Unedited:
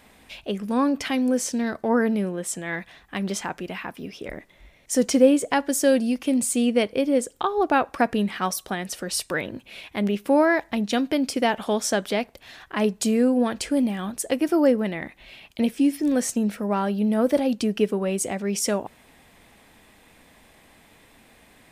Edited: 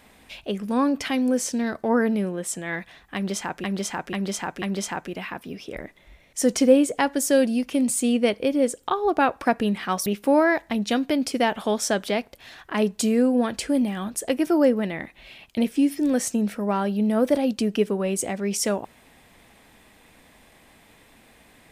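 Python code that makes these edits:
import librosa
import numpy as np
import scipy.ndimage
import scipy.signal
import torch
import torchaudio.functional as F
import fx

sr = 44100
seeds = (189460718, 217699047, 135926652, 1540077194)

y = fx.edit(x, sr, fx.repeat(start_s=3.15, length_s=0.49, count=4),
    fx.cut(start_s=8.59, length_s=1.49), tone=tone)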